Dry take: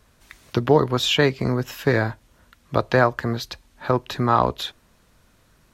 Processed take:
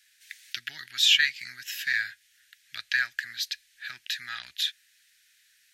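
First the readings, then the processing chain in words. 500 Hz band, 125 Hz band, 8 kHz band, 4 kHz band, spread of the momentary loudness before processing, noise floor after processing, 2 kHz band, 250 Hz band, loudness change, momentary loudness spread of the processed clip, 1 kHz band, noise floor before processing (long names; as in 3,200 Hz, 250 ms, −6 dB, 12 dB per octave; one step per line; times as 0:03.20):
below −40 dB, below −35 dB, +2.0 dB, +2.5 dB, 11 LU, −65 dBFS, +0.5 dB, below −40 dB, −5.0 dB, 19 LU, −26.0 dB, −59 dBFS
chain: elliptic high-pass filter 1,700 Hz, stop band 40 dB
level +2.5 dB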